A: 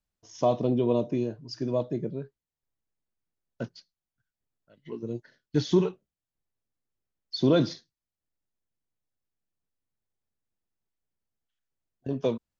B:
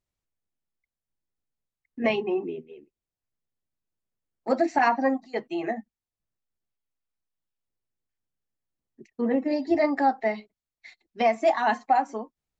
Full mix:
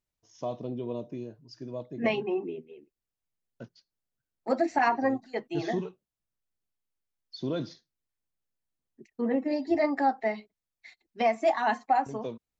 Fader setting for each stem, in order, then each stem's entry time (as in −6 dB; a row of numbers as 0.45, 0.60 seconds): −10.0, −3.0 decibels; 0.00, 0.00 seconds